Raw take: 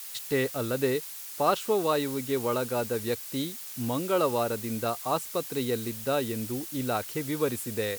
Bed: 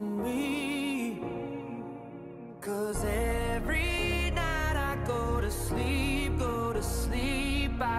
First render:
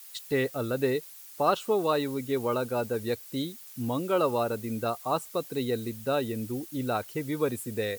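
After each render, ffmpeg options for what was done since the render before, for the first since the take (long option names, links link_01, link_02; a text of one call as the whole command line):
ffmpeg -i in.wav -af "afftdn=noise_reduction=9:noise_floor=-41" out.wav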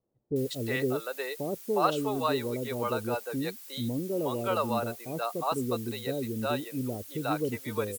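ffmpeg -i in.wav -filter_complex "[0:a]acrossover=split=510[link_01][link_02];[link_02]adelay=360[link_03];[link_01][link_03]amix=inputs=2:normalize=0" out.wav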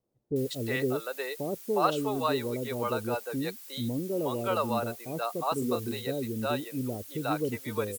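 ffmpeg -i in.wav -filter_complex "[0:a]asettb=1/sr,asplit=3[link_01][link_02][link_03];[link_01]atrim=end=5.594[link_04];[link_02]atrim=start=5.59:end=6.02,asetpts=PTS-STARTPTS,afade=type=in:duration=0.004:curve=qsin,afade=type=out:start_time=0.426:duration=0.004:curve=qsin,asplit=2[link_05][link_06];[link_06]adelay=29,volume=-5dB[link_07];[link_05][link_07]amix=inputs=2:normalize=0,atrim=end_sample=18963[link_08];[link_03]atrim=start=6.016[link_09];[link_04][link_08]acrossfade=duration=0.004:curve1=hsin:curve2=qsin[link_10];[link_10][link_09]acrossfade=duration=0.004:curve1=qsin:curve2=hsin" out.wav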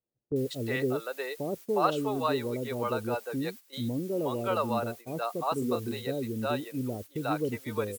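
ffmpeg -i in.wav -af "agate=range=-12dB:threshold=-41dB:ratio=16:detection=peak,highshelf=frequency=4500:gain=-5" out.wav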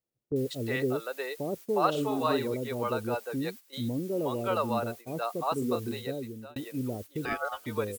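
ffmpeg -i in.wav -filter_complex "[0:a]asettb=1/sr,asplit=3[link_01][link_02][link_03];[link_01]atrim=end=1.904[link_04];[link_02]atrim=start=1.9:end=2.54,asetpts=PTS-STARTPTS,afade=type=in:duration=0.004:curve=qsin,afade=type=out:start_time=0.636:duration=0.004:curve=qsin,asplit=2[link_05][link_06];[link_06]adelay=48,volume=-5.5dB[link_07];[link_05][link_07]amix=inputs=2:normalize=0,atrim=end_sample=28224[link_08];[link_03]atrim=start=2.536[link_09];[link_04][link_08]acrossfade=duration=0.004:curve1=hsin:curve2=qsin[link_10];[link_10][link_09]acrossfade=duration=0.004:curve1=qsin:curve2=hsin,asettb=1/sr,asplit=3[link_11][link_12][link_13];[link_11]atrim=end=7.254[link_14];[link_12]atrim=start=7.25:end=7.66,asetpts=PTS-STARTPTS,afade=type=in:duration=0.004:curve=qsin,afade=type=out:start_time=0.406:duration=0.004:curve=qsin,aeval=exprs='val(0)*sin(2*PI*990*n/s)':channel_layout=same[link_15];[link_13]atrim=start=7.656[link_16];[link_14][link_15]acrossfade=duration=0.004:curve1=hsin:curve2=qsin[link_17];[link_17][link_16]acrossfade=duration=0.004:curve1=qsin:curve2=hsin,asplit=2[link_18][link_19];[link_18]atrim=end=6.56,asetpts=PTS-STARTPTS,afade=type=out:start_time=5.77:duration=0.79:curve=qsin[link_20];[link_19]atrim=start=6.56,asetpts=PTS-STARTPTS,afade=type=in:duration=0.004:curve=hsin[link_21];[link_20][link_21]concat=n=2:v=0:a=1" out.wav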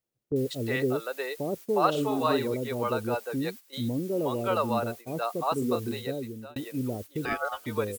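ffmpeg -i in.wav -af "volume=2dB" out.wav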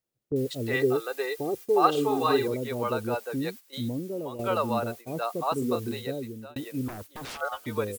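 ffmpeg -i in.wav -filter_complex "[0:a]asettb=1/sr,asplit=3[link_01][link_02][link_03];[link_01]atrim=end=0.734[link_04];[link_02]atrim=start=0.73:end=2.48,asetpts=PTS-STARTPTS,afade=type=in:duration=0.004:curve=qsin,afade=type=out:start_time=1.746:duration=0.004:curve=qsin,aecho=1:1:2.5:0.7,atrim=end_sample=77175[link_05];[link_03]atrim=start=2.476[link_06];[link_04][link_05]acrossfade=duration=0.004:curve1=hsin:curve2=qsin[link_07];[link_07][link_06]acrossfade=duration=0.004:curve1=qsin:curve2=hsin,asettb=1/sr,asplit=3[link_08][link_09][link_10];[link_08]atrim=end=6.884[link_11];[link_09]atrim=start=6.88:end=7.41,asetpts=PTS-STARTPTS,afade=type=in:duration=0.004:curve=qsin,afade=type=out:start_time=0.526:duration=0.004:curve=qsin,aeval=exprs='0.0211*(abs(mod(val(0)/0.0211+3,4)-2)-1)':channel_layout=same[link_12];[link_10]atrim=start=7.406[link_13];[link_11][link_12]acrossfade=duration=0.004:curve1=hsin:curve2=qsin[link_14];[link_14][link_13]acrossfade=duration=0.004:curve1=qsin:curve2=hsin,asplit=2[link_15][link_16];[link_15]atrim=end=4.39,asetpts=PTS-STARTPTS,afade=type=out:start_time=3.76:duration=0.63:silence=0.334965[link_17];[link_16]atrim=start=4.39,asetpts=PTS-STARTPTS,afade=type=in:duration=0.004:curve=hsin:silence=0.334965[link_18];[link_17][link_18]concat=n=2:v=0:a=1" out.wav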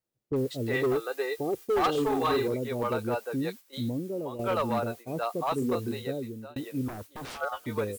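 ffmpeg -i in.wav -filter_complex "[0:a]acrossover=split=1800[link_01][link_02];[link_01]volume=22.5dB,asoftclip=hard,volume=-22.5dB[link_03];[link_02]flanger=delay=17:depth=7:speed=1.5[link_04];[link_03][link_04]amix=inputs=2:normalize=0" out.wav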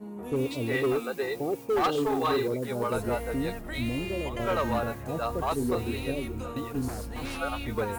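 ffmpeg -i in.wav -i bed.wav -filter_complex "[1:a]volume=-7dB[link_01];[0:a][link_01]amix=inputs=2:normalize=0" out.wav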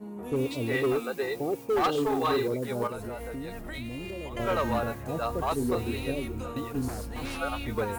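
ffmpeg -i in.wav -filter_complex "[0:a]asettb=1/sr,asplit=3[link_01][link_02][link_03];[link_01]atrim=end=2.874[link_04];[link_02]atrim=start=2.87:end=4.37,asetpts=PTS-STARTPTS,afade=type=in:duration=0.004:curve=qsin,afade=type=out:start_time=1.496:duration=0.004:curve=qsin,acompressor=threshold=-33dB:ratio=6:attack=3.2:release=140:knee=1:detection=peak[link_05];[link_03]atrim=start=4.366[link_06];[link_04][link_05]acrossfade=duration=0.004:curve1=hsin:curve2=qsin[link_07];[link_07][link_06]acrossfade=duration=0.004:curve1=qsin:curve2=hsin" out.wav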